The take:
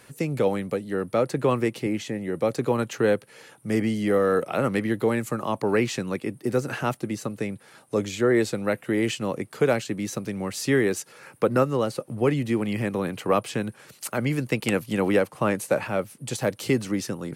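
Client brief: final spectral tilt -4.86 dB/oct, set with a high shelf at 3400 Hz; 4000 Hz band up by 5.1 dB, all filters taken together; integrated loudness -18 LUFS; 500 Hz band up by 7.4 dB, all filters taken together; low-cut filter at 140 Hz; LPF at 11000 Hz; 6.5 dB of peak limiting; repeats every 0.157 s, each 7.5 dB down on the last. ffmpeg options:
-af "highpass=140,lowpass=11k,equalizer=f=500:t=o:g=8.5,highshelf=f=3.4k:g=4.5,equalizer=f=4k:t=o:g=3.5,alimiter=limit=-9dB:level=0:latency=1,aecho=1:1:157|314|471|628|785:0.422|0.177|0.0744|0.0312|0.0131,volume=3.5dB"

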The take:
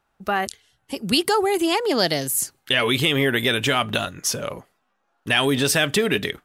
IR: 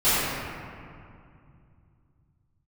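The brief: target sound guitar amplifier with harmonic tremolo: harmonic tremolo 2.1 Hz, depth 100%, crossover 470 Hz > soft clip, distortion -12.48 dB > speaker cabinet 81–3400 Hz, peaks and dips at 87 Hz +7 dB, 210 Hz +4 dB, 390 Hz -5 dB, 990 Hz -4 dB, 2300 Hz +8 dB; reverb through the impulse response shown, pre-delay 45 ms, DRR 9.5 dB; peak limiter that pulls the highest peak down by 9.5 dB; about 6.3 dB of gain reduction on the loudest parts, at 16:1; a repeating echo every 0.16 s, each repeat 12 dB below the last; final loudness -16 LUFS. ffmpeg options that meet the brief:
-filter_complex "[0:a]acompressor=threshold=-21dB:ratio=16,alimiter=limit=-18dB:level=0:latency=1,aecho=1:1:160|320|480:0.251|0.0628|0.0157,asplit=2[a][b];[1:a]atrim=start_sample=2205,adelay=45[c];[b][c]afir=irnorm=-1:irlink=0,volume=-29dB[d];[a][d]amix=inputs=2:normalize=0,acrossover=split=470[e][f];[e]aeval=exprs='val(0)*(1-1/2+1/2*cos(2*PI*2.1*n/s))':c=same[g];[f]aeval=exprs='val(0)*(1-1/2-1/2*cos(2*PI*2.1*n/s))':c=same[h];[g][h]amix=inputs=2:normalize=0,asoftclip=threshold=-29dB,highpass=81,equalizer=f=87:t=q:w=4:g=7,equalizer=f=210:t=q:w=4:g=4,equalizer=f=390:t=q:w=4:g=-5,equalizer=f=990:t=q:w=4:g=-4,equalizer=f=2.3k:t=q:w=4:g=8,lowpass=f=3.4k:w=0.5412,lowpass=f=3.4k:w=1.3066,volume=20dB"

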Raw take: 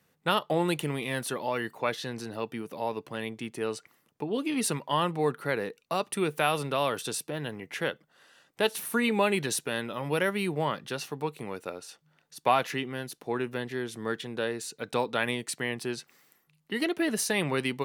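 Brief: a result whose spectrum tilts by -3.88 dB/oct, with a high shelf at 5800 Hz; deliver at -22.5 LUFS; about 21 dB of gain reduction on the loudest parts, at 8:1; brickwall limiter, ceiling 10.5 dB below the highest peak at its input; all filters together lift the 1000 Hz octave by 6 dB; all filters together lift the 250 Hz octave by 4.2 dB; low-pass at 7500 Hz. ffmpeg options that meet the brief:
-af "lowpass=7.5k,equalizer=f=250:t=o:g=5,equalizer=f=1k:t=o:g=7,highshelf=f=5.8k:g=8.5,acompressor=threshold=-35dB:ratio=8,volume=18.5dB,alimiter=limit=-9.5dB:level=0:latency=1"

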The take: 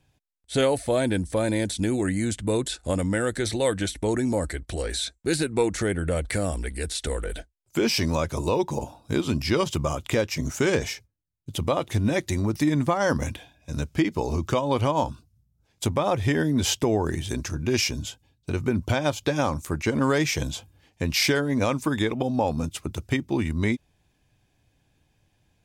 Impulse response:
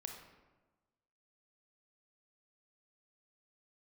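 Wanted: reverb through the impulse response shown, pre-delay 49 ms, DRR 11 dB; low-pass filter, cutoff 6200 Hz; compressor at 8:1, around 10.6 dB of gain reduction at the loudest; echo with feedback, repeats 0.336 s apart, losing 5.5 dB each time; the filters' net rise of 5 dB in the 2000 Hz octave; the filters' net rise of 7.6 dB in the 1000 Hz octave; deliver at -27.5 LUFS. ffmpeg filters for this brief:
-filter_complex "[0:a]lowpass=6.2k,equalizer=f=1k:t=o:g=8.5,equalizer=f=2k:t=o:g=3.5,acompressor=threshold=-25dB:ratio=8,aecho=1:1:336|672|1008|1344|1680|2016|2352:0.531|0.281|0.149|0.079|0.0419|0.0222|0.0118,asplit=2[a][b];[1:a]atrim=start_sample=2205,adelay=49[c];[b][c]afir=irnorm=-1:irlink=0,volume=-8dB[d];[a][d]amix=inputs=2:normalize=0,volume=1.5dB"

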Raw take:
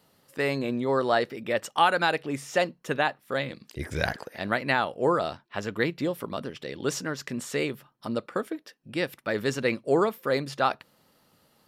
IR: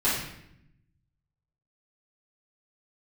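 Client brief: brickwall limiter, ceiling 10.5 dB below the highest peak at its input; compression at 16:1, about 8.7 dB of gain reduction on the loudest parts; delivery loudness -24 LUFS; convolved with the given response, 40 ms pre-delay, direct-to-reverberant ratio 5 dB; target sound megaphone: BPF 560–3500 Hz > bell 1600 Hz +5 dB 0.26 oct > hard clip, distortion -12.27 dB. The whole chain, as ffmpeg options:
-filter_complex "[0:a]acompressor=threshold=-26dB:ratio=16,alimiter=limit=-23.5dB:level=0:latency=1,asplit=2[a][b];[1:a]atrim=start_sample=2205,adelay=40[c];[b][c]afir=irnorm=-1:irlink=0,volume=-18dB[d];[a][d]amix=inputs=2:normalize=0,highpass=560,lowpass=3.5k,equalizer=f=1.6k:t=o:w=0.26:g=5,asoftclip=type=hard:threshold=-31.5dB,volume=15dB"

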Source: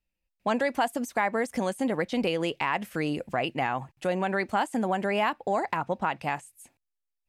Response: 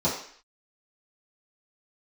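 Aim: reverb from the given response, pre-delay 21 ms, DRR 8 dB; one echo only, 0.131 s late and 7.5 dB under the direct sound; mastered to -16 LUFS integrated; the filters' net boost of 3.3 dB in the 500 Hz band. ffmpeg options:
-filter_complex "[0:a]equalizer=f=500:t=o:g=4,aecho=1:1:131:0.422,asplit=2[a][b];[1:a]atrim=start_sample=2205,adelay=21[c];[b][c]afir=irnorm=-1:irlink=0,volume=-20.5dB[d];[a][d]amix=inputs=2:normalize=0,volume=9dB"

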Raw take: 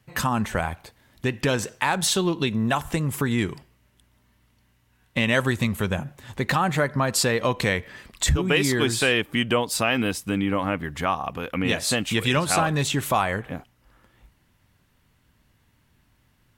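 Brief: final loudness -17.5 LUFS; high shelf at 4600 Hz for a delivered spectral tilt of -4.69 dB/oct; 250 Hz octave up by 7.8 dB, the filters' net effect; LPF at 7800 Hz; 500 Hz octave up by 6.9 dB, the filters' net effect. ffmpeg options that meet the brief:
-af "lowpass=7.8k,equalizer=f=250:t=o:g=8,equalizer=f=500:t=o:g=6,highshelf=f=4.6k:g=7,volume=1.5dB"

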